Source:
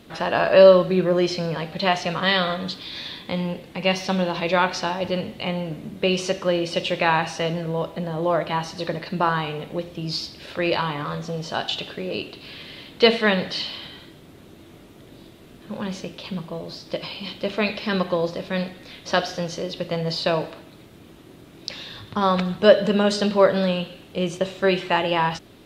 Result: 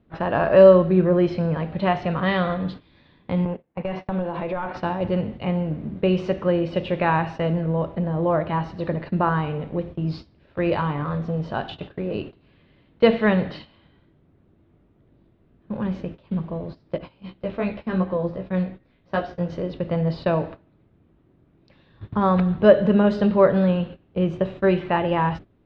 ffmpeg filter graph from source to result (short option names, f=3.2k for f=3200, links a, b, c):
-filter_complex "[0:a]asettb=1/sr,asplit=3[a][b][c];[a]atrim=end=3.454[d];[b]atrim=start=3.45:end=4.77,asetpts=PTS-STARTPTS,afade=t=in:d=0.004:c=qsin,afade=t=out:st=1.316:d=0.004:c=qsin,agate=range=-17dB:threshold=-31dB:ratio=16:release=100:detection=peak,asplit=2[e][f];[f]highpass=f=720:p=1,volume=15dB,asoftclip=type=tanh:threshold=-5dB[g];[e][g]amix=inputs=2:normalize=0,lowpass=f=1k:p=1,volume=-6dB,acompressor=threshold=-24dB:ratio=6:attack=3.2:release=140:knee=1:detection=peak[h];[c]atrim=start=4.766[i];[d][h]acrossfade=d=0.004:c1=hsin:c2=qsin[j];[j][i]acrossfade=d=0.004:c1=qsin:c2=hsin,asettb=1/sr,asplit=3[k][l][m];[k]atrim=end=16.984[n];[l]atrim=start=16.98:end=19.5,asetpts=PTS-STARTPTS,afade=t=in:d=0.004:c=qsin,afade=t=out:st=2.516:d=0.004:c=qsin,flanger=delay=15:depth=2.4:speed=2.7,adynamicequalizer=threshold=0.01:dfrequency=1900:dqfactor=0.7:tfrequency=1900:tqfactor=0.7:attack=5:release=100:ratio=0.375:range=2:mode=cutabove:tftype=highshelf[o];[m]atrim=start=19.496[p];[n][o]acrossfade=d=0.004:c1=hsin:c2=qsin[q];[q][p]acrossfade=d=0.004:c1=qsin:c2=hsin,lowpass=1.8k,lowshelf=f=170:g=12,agate=range=-16dB:threshold=-33dB:ratio=16:detection=peak,volume=-1dB"